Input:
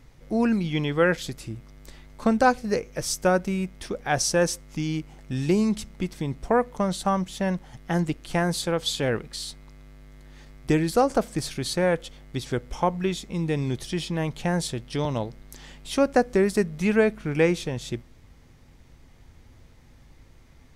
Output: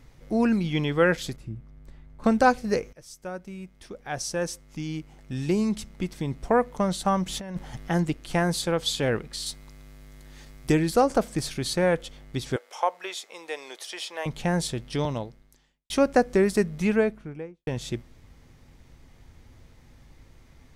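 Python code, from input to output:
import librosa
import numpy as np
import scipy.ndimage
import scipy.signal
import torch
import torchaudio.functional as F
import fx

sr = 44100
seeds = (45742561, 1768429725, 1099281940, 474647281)

y = fx.curve_eq(x, sr, hz=(200.0, 280.0, 1600.0, 5200.0), db=(0, -6, -9, -18), at=(1.36, 2.24))
y = fx.over_compress(y, sr, threshold_db=-30.0, ratio=-0.5, at=(7.26, 7.89))
y = fx.high_shelf(y, sr, hz=4800.0, db=8.5, at=(9.46, 10.72))
y = fx.highpass(y, sr, hz=530.0, slope=24, at=(12.56, 14.26))
y = fx.studio_fade_out(y, sr, start_s=16.71, length_s=0.96)
y = fx.edit(y, sr, fx.fade_in_from(start_s=2.93, length_s=3.64, floor_db=-21.0),
    fx.fade_out_span(start_s=15.02, length_s=0.88, curve='qua'), tone=tone)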